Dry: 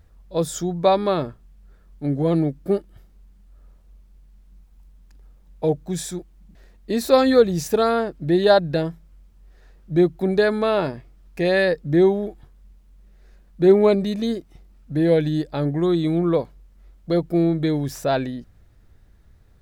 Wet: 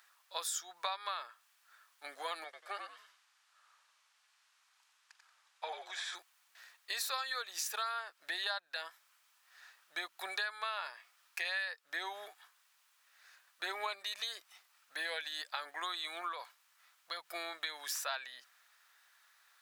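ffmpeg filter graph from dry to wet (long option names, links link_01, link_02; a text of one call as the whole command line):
ffmpeg -i in.wav -filter_complex "[0:a]asettb=1/sr,asplit=3[link_01][link_02][link_03];[link_01]atrim=end=2.444[link_04];[link_02]atrim=start=2.44:end=6.15,asetpts=PTS-STARTPTS,afade=type=in:duration=0.004:curve=qsin,afade=type=out:start_time=3.706:duration=0.004:curve=qsin,acrossover=split=3200[link_05][link_06];[link_06]acompressor=threshold=-57dB:ratio=4:attack=1:release=60[link_07];[link_05][link_07]amix=inputs=2:normalize=0,highpass=530,lowpass=7600,asplit=5[link_08][link_09][link_10][link_11][link_12];[link_09]adelay=91,afreqshift=-56,volume=-5dB[link_13];[link_10]adelay=182,afreqshift=-112,volume=-14.4dB[link_14];[link_11]adelay=273,afreqshift=-168,volume=-23.7dB[link_15];[link_12]adelay=364,afreqshift=-224,volume=-33.1dB[link_16];[link_08][link_13][link_14][link_15][link_16]amix=inputs=5:normalize=0,atrim=end_sample=163611[link_17];[link_03]atrim=start=6.146[link_18];[link_04][link_17]acrossfade=duration=0.004:curve1=hsin:curve2=qsin[link_19];[link_19][link_18]acrossfade=duration=0.004:curve1=qsin:curve2=hsin,asettb=1/sr,asplit=3[link_20][link_21][link_22];[link_20]atrim=end=16.324[link_23];[link_21]atrim=start=16.32:end=17.29,asetpts=PTS-STARTPTS,afade=type=in:duration=0.004:curve=qsin,afade=type=out:start_time=0.966:duration=0.004:curve=qsin,asubboost=boost=11:cutoff=170,acompressor=threshold=-25dB:ratio=2.5:attack=3.2:release=140:knee=1:detection=peak[link_24];[link_22]atrim=start=17.286[link_25];[link_23][link_24]acrossfade=duration=0.004:curve1=hsin:curve2=qsin[link_26];[link_26][link_25]acrossfade=duration=0.004:curve1=qsin:curve2=hsin,highpass=frequency=1100:width=0.5412,highpass=frequency=1100:width=1.3066,bandreject=frequency=2100:width=28,acompressor=threshold=-41dB:ratio=6,volume=5dB" out.wav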